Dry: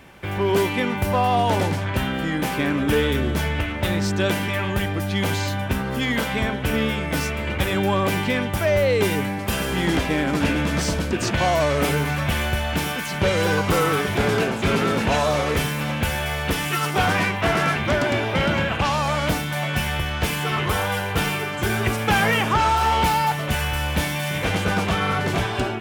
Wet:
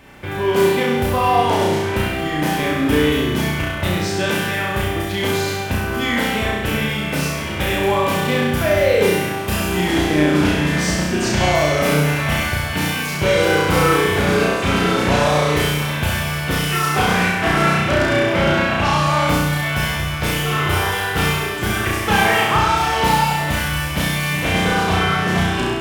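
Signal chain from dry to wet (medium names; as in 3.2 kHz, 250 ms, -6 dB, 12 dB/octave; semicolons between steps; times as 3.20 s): flutter echo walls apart 5.7 m, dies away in 1.1 s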